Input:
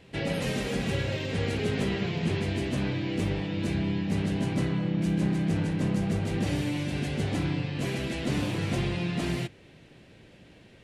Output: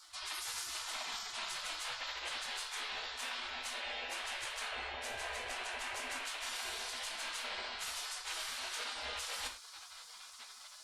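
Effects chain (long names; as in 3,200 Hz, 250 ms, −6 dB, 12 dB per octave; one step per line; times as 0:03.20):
gate on every frequency bin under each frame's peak −25 dB weak
reversed playback
downward compressor 5 to 1, threshold −59 dBFS, peak gain reduction 18 dB
reversed playback
reverb whose tail is shaped and stops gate 140 ms falling, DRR 5 dB
level +17 dB
Opus 64 kbit/s 48,000 Hz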